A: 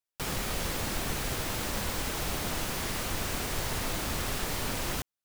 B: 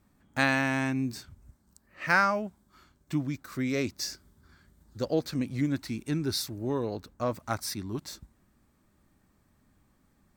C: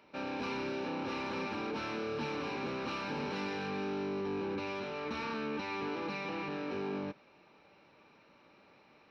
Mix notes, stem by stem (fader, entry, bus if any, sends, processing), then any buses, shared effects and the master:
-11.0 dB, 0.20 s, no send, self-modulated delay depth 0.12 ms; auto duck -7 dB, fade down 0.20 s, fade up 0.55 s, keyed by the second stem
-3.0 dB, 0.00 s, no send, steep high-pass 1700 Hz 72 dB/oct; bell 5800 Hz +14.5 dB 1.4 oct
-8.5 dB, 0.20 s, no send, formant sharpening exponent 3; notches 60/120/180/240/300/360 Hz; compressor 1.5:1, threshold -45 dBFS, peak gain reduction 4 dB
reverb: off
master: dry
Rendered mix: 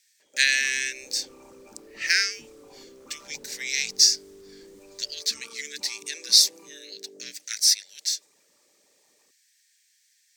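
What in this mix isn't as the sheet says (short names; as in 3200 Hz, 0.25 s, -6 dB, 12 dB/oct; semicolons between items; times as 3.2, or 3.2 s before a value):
stem A -11.0 dB -> -22.5 dB; stem B -3.0 dB -> +5.0 dB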